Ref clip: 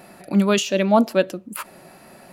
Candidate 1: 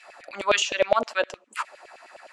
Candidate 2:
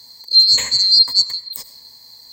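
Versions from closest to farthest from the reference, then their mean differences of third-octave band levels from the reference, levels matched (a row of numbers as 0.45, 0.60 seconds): 1, 2; 8.0, 15.5 decibels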